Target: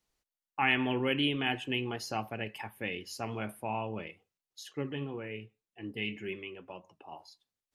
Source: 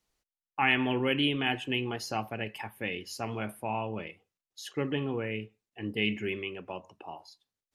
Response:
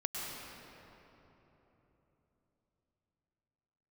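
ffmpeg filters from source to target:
-filter_complex "[0:a]asettb=1/sr,asplit=3[s0][s1][s2];[s0]atrim=end=4.634[s3];[s1]atrim=start=4.63:end=7.12,asetpts=PTS-STARTPTS,afade=t=in:d=0.004:c=qsin,afade=t=out:st=2.486:d=0.004:c=qsin,flanger=delay=5.1:depth=3.4:regen=56:speed=1.8:shape=triangular[s4];[s2]atrim=start=7.116[s5];[s3][s4]acrossfade=d=0.004:c1=hsin:c2=qsin[s6];[s6][s5]acrossfade=d=0.004:c1=qsin:c2=hsin,volume=0.794"

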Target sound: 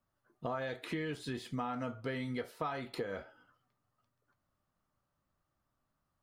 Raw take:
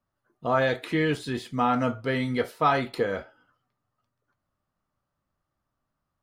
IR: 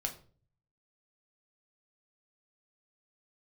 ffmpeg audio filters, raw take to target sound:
-af "acompressor=threshold=0.02:ratio=6,volume=0.841"

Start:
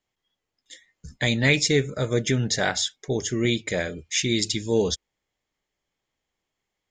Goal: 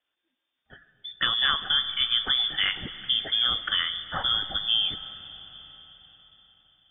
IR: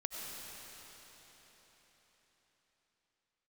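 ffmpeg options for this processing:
-filter_complex "[0:a]acompressor=threshold=0.0794:ratio=6,lowpass=f=3100:t=q:w=0.5098,lowpass=f=3100:t=q:w=0.6013,lowpass=f=3100:t=q:w=0.9,lowpass=f=3100:t=q:w=2.563,afreqshift=-3600,asplit=2[s0][s1];[1:a]atrim=start_sample=2205,lowshelf=f=190:g=8.5[s2];[s1][s2]afir=irnorm=-1:irlink=0,volume=0.316[s3];[s0][s3]amix=inputs=2:normalize=0"

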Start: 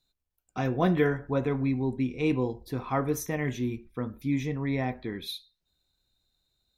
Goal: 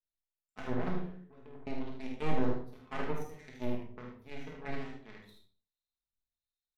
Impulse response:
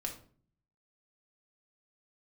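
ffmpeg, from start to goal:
-filter_complex "[0:a]alimiter=limit=0.0794:level=0:latency=1:release=21,asettb=1/sr,asplit=3[s0][s1][s2];[s0]atrim=end=0.944[s3];[s1]atrim=start=0.94:end=1.67,asetpts=PTS-STARTPTS,afade=t=in:d=0.004:c=qsin,afade=t=out:st=0.726:d=0.004:c=qsin,acompressor=threshold=0.0251:ratio=10[s4];[s2]atrim=start=1.666[s5];[s3][s4]acrossfade=d=0.004:c1=hsin:c2=qsin[s6];[s6][s5]acrossfade=d=0.004:c1=qsin:c2=hsin,aeval=exprs='0.0794*(cos(1*acos(clip(val(0)/0.0794,-1,1)))-cos(1*PI/2))+0.0224*(cos(2*acos(clip(val(0)/0.0794,-1,1)))-cos(2*PI/2))+0.00891*(cos(3*acos(clip(val(0)/0.0794,-1,1)))-cos(3*PI/2))+0.00282*(cos(7*acos(clip(val(0)/0.0794,-1,1)))-cos(7*PI/2))+0.00355*(cos(8*acos(clip(val(0)/0.0794,-1,1)))-cos(8*PI/2))':c=same,acrossover=split=1700[s7][s8];[s7]aeval=exprs='val(0)*(1-0.7/2+0.7/2*cos(2*PI*1.3*n/s))':c=same[s9];[s8]aeval=exprs='val(0)*(1-0.7/2-0.7/2*cos(2*PI*1.3*n/s))':c=same[s10];[s9][s10]amix=inputs=2:normalize=0,aeval=exprs='0.15*(cos(1*acos(clip(val(0)/0.15,-1,1)))-cos(1*PI/2))+0.0168*(cos(7*acos(clip(val(0)/0.15,-1,1)))-cos(7*PI/2))':c=same,aecho=1:1:49|77:0.473|0.473[s11];[1:a]atrim=start_sample=2205,afade=t=out:st=0.31:d=0.01,atrim=end_sample=14112,asetrate=37044,aresample=44100[s12];[s11][s12]afir=irnorm=-1:irlink=0,volume=0.631"

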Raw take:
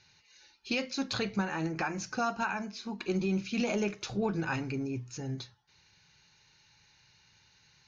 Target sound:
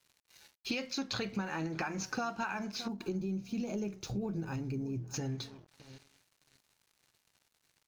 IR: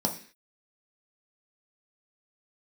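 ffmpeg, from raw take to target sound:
-filter_complex "[0:a]asplit=2[s0][s1];[s1]adelay=618,lowpass=f=1500:p=1,volume=0.1,asplit=2[s2][s3];[s3]adelay=618,lowpass=f=1500:p=1,volume=0.27[s4];[s0][s2][s4]amix=inputs=3:normalize=0,aeval=exprs='sgn(val(0))*max(abs(val(0))-0.00119,0)':c=same,asettb=1/sr,asplit=3[s5][s6][s7];[s5]atrim=end=2.884[s8];[s6]atrim=start=2.88:end=5.14,asetpts=PTS-STARTPTS,afade=t=in:d=0.004:c=qsin,afade=t=out:st=2.256:d=0.004:c=qsin,equalizer=f=2000:w=0.31:g=-15[s9];[s7]atrim=start=5.136[s10];[s8][s9]acrossfade=d=0.004:c1=hsin:c2=qsin[s11];[s11][s10]acrossfade=d=0.004:c1=qsin:c2=hsin,acompressor=threshold=0.00708:ratio=4,volume=2.51"

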